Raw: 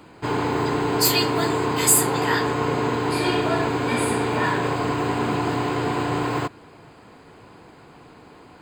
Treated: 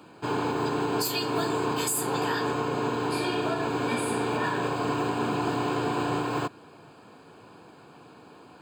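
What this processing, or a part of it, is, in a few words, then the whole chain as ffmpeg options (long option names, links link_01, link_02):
PA system with an anti-feedback notch: -af "highpass=120,asuperstop=centerf=2000:order=4:qfactor=5.7,alimiter=limit=-14.5dB:level=0:latency=1:release=209,volume=-3dB"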